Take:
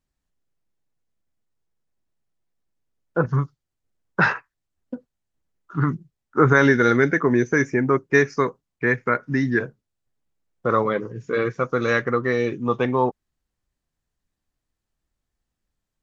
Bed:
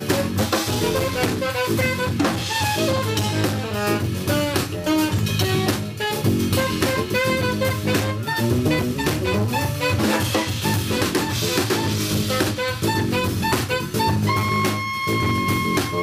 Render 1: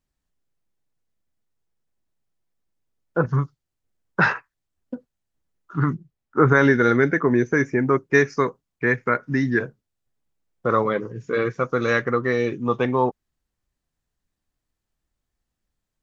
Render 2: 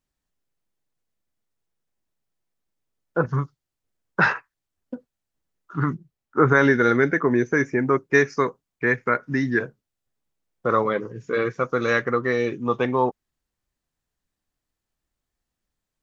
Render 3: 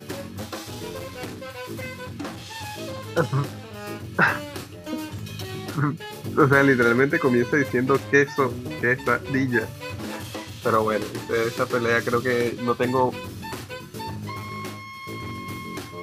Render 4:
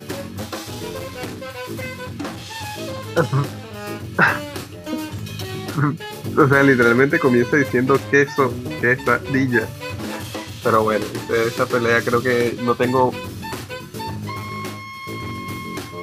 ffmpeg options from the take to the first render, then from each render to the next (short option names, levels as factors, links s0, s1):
-filter_complex "[0:a]asettb=1/sr,asplit=3[s0][s1][s2];[s0]atrim=end=5.934[s3];[s1]atrim=start=5.93:end=7.8,asetpts=PTS-STARTPTS,afade=t=in:d=0.004:c=qsin,afade=t=out:st=1.866:d=0.004:c=qsin,highshelf=f=3900:g=-7.5[s4];[s2]atrim=start=7.796[s5];[s3][s4]acrossfade=d=0.004:c1=hsin:c2=qsin[s6];[s6][s5]acrossfade=d=0.004:c1=qsin:c2=hsin"
-af "lowshelf=f=190:g=-4.5"
-filter_complex "[1:a]volume=0.224[s0];[0:a][s0]amix=inputs=2:normalize=0"
-af "volume=1.68,alimiter=limit=0.794:level=0:latency=1"